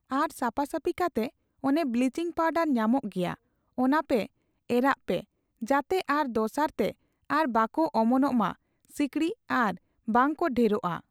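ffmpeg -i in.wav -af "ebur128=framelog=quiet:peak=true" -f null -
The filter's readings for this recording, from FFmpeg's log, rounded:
Integrated loudness:
  I:         -27.7 LUFS
  Threshold: -38.1 LUFS
Loudness range:
  LRA:         1.7 LU
  Threshold: -48.1 LUFS
  LRA low:   -28.9 LUFS
  LRA high:  -27.1 LUFS
True peak:
  Peak:      -11.0 dBFS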